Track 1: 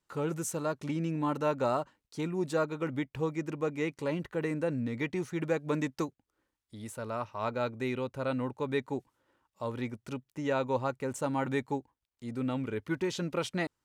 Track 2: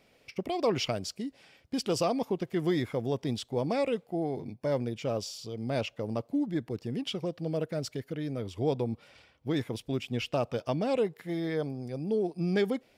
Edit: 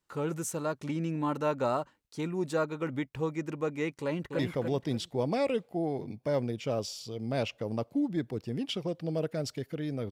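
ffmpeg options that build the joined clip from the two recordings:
-filter_complex "[0:a]apad=whole_dur=10.11,atrim=end=10.11,atrim=end=4.392[s0];[1:a]atrim=start=2.768:end=8.49[s1];[s0][s1]acrossfade=d=0.004:c1=hsin:c2=hsin,asplit=2[s2][s3];[s3]afade=t=in:st=4.01:d=0.01,afade=t=out:st=4.39:d=0.01,aecho=0:1:290|580|870|1160:0.595662|0.178699|0.0536096|0.0160829[s4];[s2][s4]amix=inputs=2:normalize=0"

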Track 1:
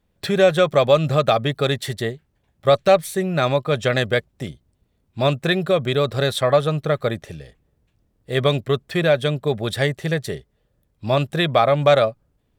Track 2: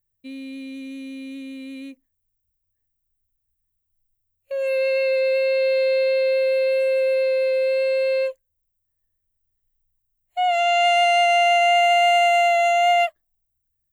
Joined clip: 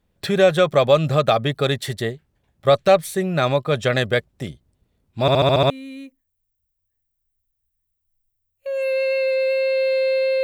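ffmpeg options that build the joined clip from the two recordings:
-filter_complex "[0:a]apad=whole_dur=10.43,atrim=end=10.43,asplit=7[s0][s1][s2][s3][s4][s5][s6];[s0]atrim=end=5.282[s7];[s1]atrim=start=5.208:end=5.282[s8];[s2]atrim=start=5.208:end=5.282[s9];[s3]atrim=start=5.208:end=5.282[s10];[s4]atrim=start=5.208:end=5.282[s11];[s5]atrim=start=5.208:end=5.282[s12];[s6]atrim=start=5.208:end=5.282[s13];[1:a]atrim=start=1.548:end=6.28[s14];[s7][s8]acrossfade=d=0.004:c1=hsin:c2=hsin[s15];[s15][s9]acrossfade=d=0.004:c1=hsin:c2=hsin[s16];[s16][s10]acrossfade=d=0.004:c1=hsin:c2=hsin[s17];[s17][s11]acrossfade=d=0.004:c1=hsin:c2=hsin[s18];[s18][s12]acrossfade=d=0.004:c1=hsin:c2=hsin[s19];[s19][s13]acrossfade=d=0.004:c1=hsin:c2=hsin[s20];[s20][s14]acrossfade=d=0.004:c1=hsin:c2=hsin"

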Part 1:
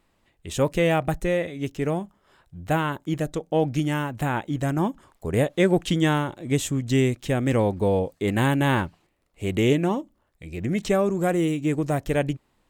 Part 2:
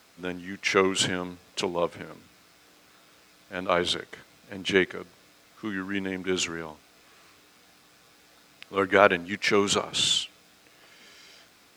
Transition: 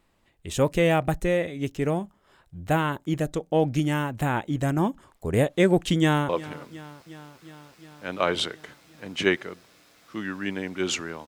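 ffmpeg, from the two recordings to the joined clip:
-filter_complex "[0:a]apad=whole_dur=11.27,atrim=end=11.27,atrim=end=6.292[s0];[1:a]atrim=start=1.778:end=6.76[s1];[s0][s1]acrossfade=d=0.004:c1=hsin:c2=hsin,asplit=2[s2][s3];[s3]afade=t=in:st=5.98:d=0.01,afade=t=out:st=6.29:d=0.01,aecho=0:1:360|720|1080|1440|1800|2160|2520|2880|3240:0.125893|0.0944194|0.0708146|0.0531109|0.0398332|0.0298749|0.0224062|0.0168046|0.0126035[s4];[s2][s4]amix=inputs=2:normalize=0"

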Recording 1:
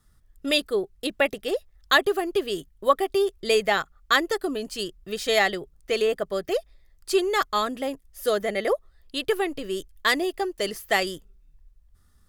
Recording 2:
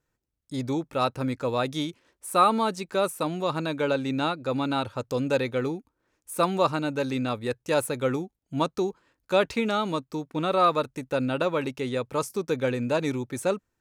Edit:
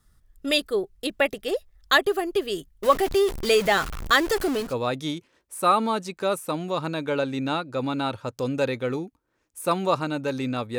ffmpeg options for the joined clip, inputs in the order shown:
-filter_complex "[0:a]asettb=1/sr,asplit=3[s0][s1][s2];[s0]atrim=end=2.834[s3];[s1]atrim=start=2.83:end=4.74,asetpts=PTS-STARTPTS,afade=t=in:d=0.004:c=qsin,afade=t=out:st=1.906:d=0.004:c=qsin,aeval=exprs='val(0)+0.5*0.0473*sgn(val(0))':c=same[s4];[s2]atrim=start=4.736[s5];[s3][s4]acrossfade=d=0.004:c1=hsin:c2=qsin[s6];[s6][s5]acrossfade=d=0.004:c1=qsin:c2=hsin,apad=whole_dur=10.78,atrim=end=10.78,atrim=end=4.74,asetpts=PTS-STARTPTS[s7];[1:a]atrim=start=1.3:end=7.5,asetpts=PTS-STARTPTS[s8];[s7][s8]acrossfade=d=0.16:c1=tri:c2=tri"

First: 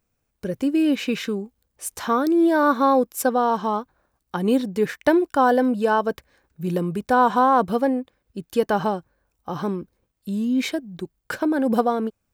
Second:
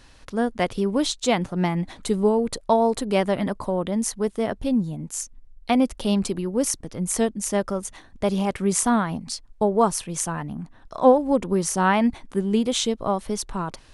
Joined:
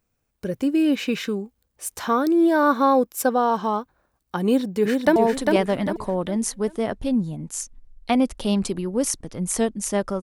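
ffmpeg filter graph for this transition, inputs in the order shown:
-filter_complex "[0:a]apad=whole_dur=10.22,atrim=end=10.22,atrim=end=5.162[s0];[1:a]atrim=start=2.758:end=7.82[s1];[s0][s1]acrossfade=d=0.004:c1=hsin:c2=hsin,asplit=2[s2][s3];[s3]afade=t=in:st=4.45:d=0.01,afade=t=out:st=5.16:d=0.01,aecho=0:1:400|800|1200|1600|2000:0.668344|0.23392|0.0818721|0.0286552|0.0100293[s4];[s2][s4]amix=inputs=2:normalize=0"

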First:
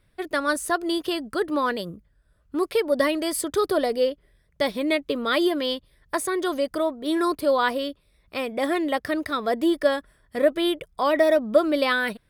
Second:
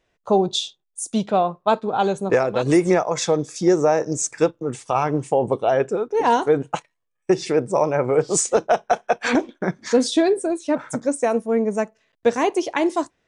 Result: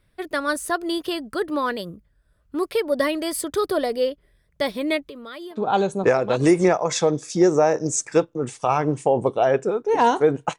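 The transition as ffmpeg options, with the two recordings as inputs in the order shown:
-filter_complex "[0:a]asettb=1/sr,asplit=3[s0][s1][s2];[s0]atrim=end=5.034[s3];[s1]atrim=start=5.03:end=5.58,asetpts=PTS-STARTPTS,afade=t=in:d=0.004:c=qsin,afade=t=out:st=0.546:d=0.004:c=qsin,acompressor=threshold=0.0112:ratio=3:attack=3.2:release=140:knee=1:detection=peak[s4];[s2]atrim=start=5.576[s5];[s3][s4]acrossfade=d=0.004:c1=hsin:c2=qsin[s6];[s6][s5]acrossfade=d=0.004:c1=qsin:c2=hsin,apad=whole_dur=10.58,atrim=end=10.58,atrim=end=5.58,asetpts=PTS-STARTPTS[s7];[1:a]atrim=start=1.76:end=6.84,asetpts=PTS-STARTPTS[s8];[s7][s8]acrossfade=d=0.08:c1=tri:c2=tri"

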